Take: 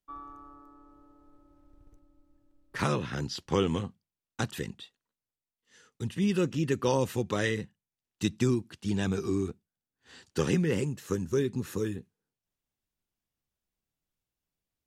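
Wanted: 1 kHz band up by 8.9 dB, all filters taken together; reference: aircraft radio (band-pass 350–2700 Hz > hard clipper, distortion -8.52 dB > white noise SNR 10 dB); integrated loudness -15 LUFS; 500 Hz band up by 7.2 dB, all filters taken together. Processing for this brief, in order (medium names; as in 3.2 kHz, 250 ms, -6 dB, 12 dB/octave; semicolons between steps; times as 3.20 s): band-pass 350–2700 Hz; peaking EQ 500 Hz +9 dB; peaking EQ 1 kHz +8.5 dB; hard clipper -21 dBFS; white noise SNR 10 dB; trim +17 dB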